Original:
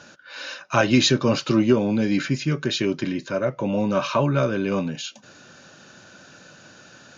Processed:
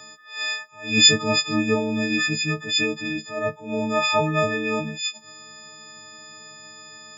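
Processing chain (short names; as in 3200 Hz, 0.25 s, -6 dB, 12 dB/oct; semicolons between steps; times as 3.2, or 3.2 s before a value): frequency quantiser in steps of 6 st; dynamic EQ 2100 Hz, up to +7 dB, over -37 dBFS, Q 2.3; attack slew limiter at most 130 dB/s; gain -3.5 dB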